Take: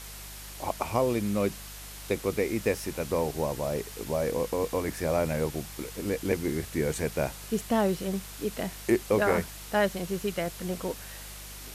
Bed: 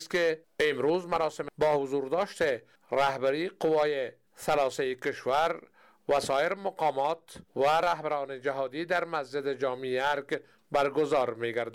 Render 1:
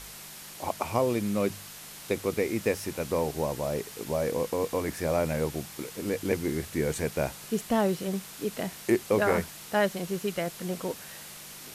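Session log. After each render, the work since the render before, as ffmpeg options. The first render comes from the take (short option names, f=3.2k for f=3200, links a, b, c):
-af "bandreject=f=50:t=h:w=4,bandreject=f=100:t=h:w=4"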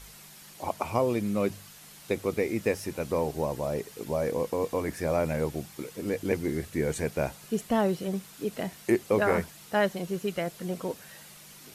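-af "afftdn=nr=7:nf=-45"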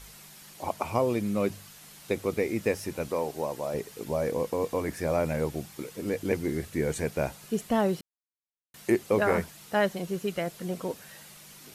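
-filter_complex "[0:a]asettb=1/sr,asplit=3[a][b][c];[a]atrim=end=3.084[d];[b]atrim=start=3.08:end=3.74,asetpts=PTS-STARTPTS,afade=t=in:d=0.004:c=qsin,afade=t=out:st=0.656:d=0.004:c=qsin,highpass=f=330:p=1[e];[c]atrim=start=3.736[f];[d][e]acrossfade=d=0.004:c1=hsin:c2=qsin[g];[g][f]acrossfade=d=0.004:c1=qsin:c2=hsin,asplit=3[h][i][j];[h]atrim=end=8.01,asetpts=PTS-STARTPTS,afade=t=out:st=8.006:d=0.004:c=hsin[k];[i]atrim=start=8.01:end=8.74,asetpts=PTS-STARTPTS,volume=0[l];[j]atrim=start=8.74,asetpts=PTS-STARTPTS,afade=t=in:d=0.004:c=hsin[m];[k][l][m]concat=n=3:v=0:a=1"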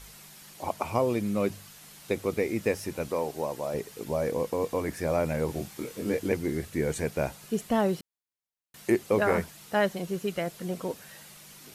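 -filter_complex "[0:a]asettb=1/sr,asplit=3[a][b][c];[a]atrim=end=5.464[d];[b]atrim=start=5.46:end=6.28,asetpts=PTS-STARTPTS,afade=t=in:d=0.004:c=qsin,afade=t=out:st=0.816:d=0.004:c=qsin,asplit=2[e][f];[f]adelay=24,volume=-3dB[g];[e][g]amix=inputs=2:normalize=0,atrim=end_sample=36162[h];[c]atrim=start=6.276[i];[d][h]acrossfade=d=0.004:c1=hsin:c2=qsin[j];[j][i]acrossfade=d=0.004:c1=qsin:c2=hsin"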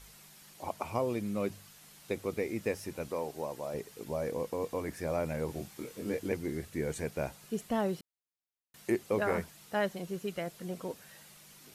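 -af "volume=-6dB"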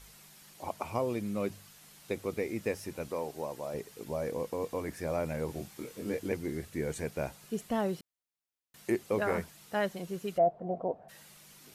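-filter_complex "[0:a]asplit=3[a][b][c];[a]afade=t=out:st=10.37:d=0.02[d];[b]lowpass=f=700:t=q:w=8.2,afade=t=in:st=10.37:d=0.02,afade=t=out:st=11.08:d=0.02[e];[c]afade=t=in:st=11.08:d=0.02[f];[d][e][f]amix=inputs=3:normalize=0"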